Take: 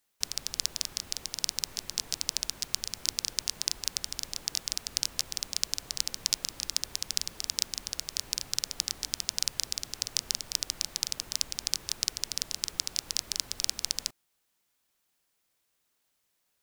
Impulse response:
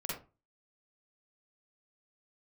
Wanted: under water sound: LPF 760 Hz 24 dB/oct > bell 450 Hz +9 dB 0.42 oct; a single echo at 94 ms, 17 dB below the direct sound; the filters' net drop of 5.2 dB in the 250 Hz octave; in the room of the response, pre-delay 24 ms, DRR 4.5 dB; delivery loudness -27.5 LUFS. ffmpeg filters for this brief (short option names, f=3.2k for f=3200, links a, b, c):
-filter_complex "[0:a]equalizer=f=250:t=o:g=-9,aecho=1:1:94:0.141,asplit=2[a][b];[1:a]atrim=start_sample=2205,adelay=24[c];[b][c]afir=irnorm=-1:irlink=0,volume=-6.5dB[d];[a][d]amix=inputs=2:normalize=0,lowpass=f=760:w=0.5412,lowpass=f=760:w=1.3066,equalizer=f=450:t=o:w=0.42:g=9,volume=26dB"